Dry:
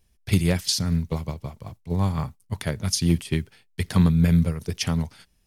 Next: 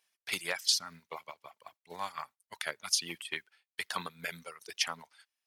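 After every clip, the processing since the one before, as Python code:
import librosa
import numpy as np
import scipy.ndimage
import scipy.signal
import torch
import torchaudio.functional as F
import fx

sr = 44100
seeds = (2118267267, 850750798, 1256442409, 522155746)

y = scipy.signal.sosfilt(scipy.signal.butter(2, 1100.0, 'highpass', fs=sr, output='sos'), x)
y = fx.dereverb_blind(y, sr, rt60_s=1.5)
y = fx.high_shelf(y, sr, hz=4400.0, db=-7.5)
y = y * 10.0 ** (1.5 / 20.0)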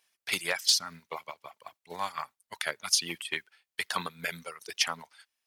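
y = 10.0 ** (-14.5 / 20.0) * np.tanh(x / 10.0 ** (-14.5 / 20.0))
y = y * 10.0 ** (4.5 / 20.0)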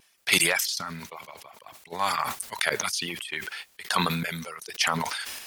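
y = fx.vibrato(x, sr, rate_hz=2.0, depth_cents=29.0)
y = fx.tremolo_random(y, sr, seeds[0], hz=2.6, depth_pct=95)
y = fx.sustainer(y, sr, db_per_s=30.0)
y = y * 10.0 ** (9.0 / 20.0)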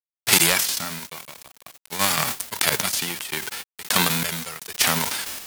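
y = fx.envelope_flatten(x, sr, power=0.3)
y = np.where(np.abs(y) >= 10.0 ** (-43.0 / 20.0), y, 0.0)
y = y * 10.0 ** (5.0 / 20.0)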